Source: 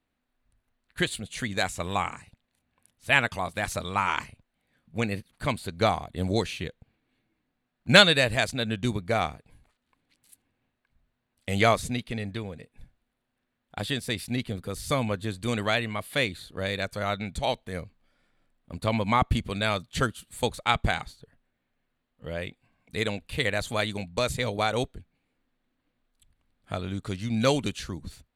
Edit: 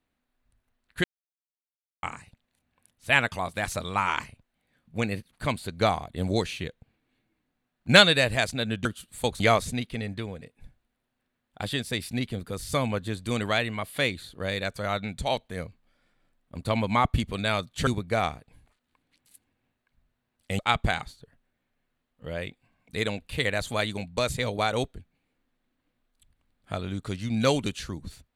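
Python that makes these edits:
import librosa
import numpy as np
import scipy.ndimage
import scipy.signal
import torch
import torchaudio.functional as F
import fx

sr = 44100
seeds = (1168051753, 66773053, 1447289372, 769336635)

y = fx.edit(x, sr, fx.silence(start_s=1.04, length_s=0.99),
    fx.swap(start_s=8.85, length_s=2.72, other_s=20.04, other_length_s=0.55), tone=tone)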